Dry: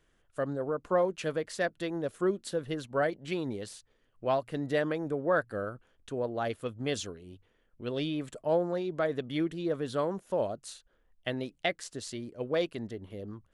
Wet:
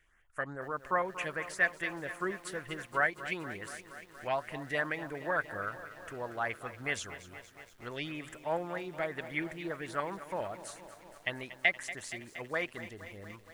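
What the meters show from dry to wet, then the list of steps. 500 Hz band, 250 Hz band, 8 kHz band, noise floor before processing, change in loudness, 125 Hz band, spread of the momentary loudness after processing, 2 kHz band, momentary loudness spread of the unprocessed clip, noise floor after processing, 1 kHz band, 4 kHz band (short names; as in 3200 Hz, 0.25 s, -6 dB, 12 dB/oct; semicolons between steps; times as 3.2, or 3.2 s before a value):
-8.0 dB, -9.0 dB, -1.5 dB, -70 dBFS, -3.0 dB, -7.5 dB, 15 LU, +6.0 dB, 13 LU, -58 dBFS, 0.0 dB, -3.0 dB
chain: graphic EQ 125/250/500/1000/2000/4000 Hz -6/-8/-9/+3/+12/-8 dB; LFO notch saw up 4.9 Hz 920–5500 Hz; lo-fi delay 0.235 s, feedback 80%, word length 9-bit, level -14 dB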